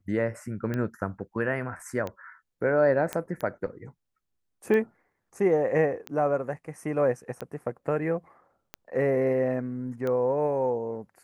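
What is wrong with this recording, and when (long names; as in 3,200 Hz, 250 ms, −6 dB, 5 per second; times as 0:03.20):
scratch tick 45 rpm −19 dBFS
0:03.13: click −14 dBFS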